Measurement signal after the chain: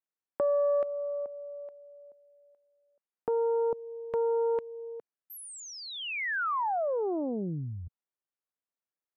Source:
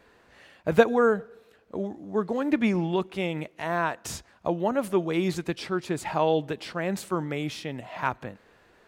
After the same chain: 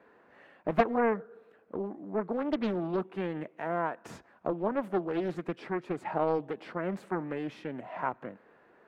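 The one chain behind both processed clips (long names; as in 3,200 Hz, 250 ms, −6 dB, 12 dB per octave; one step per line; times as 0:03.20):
three-way crossover with the lows and the highs turned down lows −19 dB, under 150 Hz, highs −19 dB, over 2,100 Hz
in parallel at 0 dB: downward compressor, threshold −34 dBFS
on the sum: highs frequency-modulated by the lows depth 0.74 ms
level −6.5 dB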